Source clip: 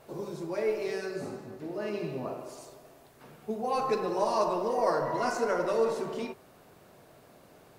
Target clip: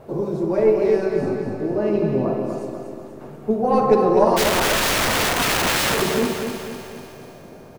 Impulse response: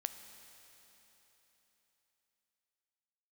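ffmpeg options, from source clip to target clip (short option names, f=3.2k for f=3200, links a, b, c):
-filter_complex "[0:a]aeval=exprs='0.237*(cos(1*acos(clip(val(0)/0.237,-1,1)))-cos(1*PI/2))+0.0531*(cos(2*acos(clip(val(0)/0.237,-1,1)))-cos(2*PI/2))':c=same,tiltshelf=f=1.3k:g=8.5,asplit=3[a][b][c];[a]afade=t=out:st=4.36:d=0.02[d];[b]aeval=exprs='(mod(14.1*val(0)+1,2)-1)/14.1':c=same,afade=t=in:st=4.36:d=0.02,afade=t=out:st=6.01:d=0.02[e];[c]afade=t=in:st=6.01:d=0.02[f];[d][e][f]amix=inputs=3:normalize=0,aecho=1:1:245|490|735|980|1225|1470:0.473|0.237|0.118|0.0591|0.0296|0.0148,asplit=2[g][h];[1:a]atrim=start_sample=2205[i];[h][i]afir=irnorm=-1:irlink=0,volume=8dB[j];[g][j]amix=inputs=2:normalize=0,volume=-3.5dB"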